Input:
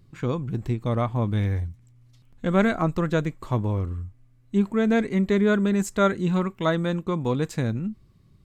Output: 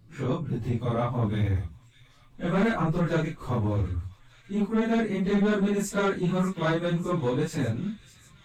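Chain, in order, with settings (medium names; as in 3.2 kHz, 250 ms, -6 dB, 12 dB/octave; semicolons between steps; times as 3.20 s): phase randomisation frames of 100 ms; saturation -18 dBFS, distortion -14 dB; feedback echo behind a high-pass 596 ms, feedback 73%, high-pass 2.6 kHz, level -14 dB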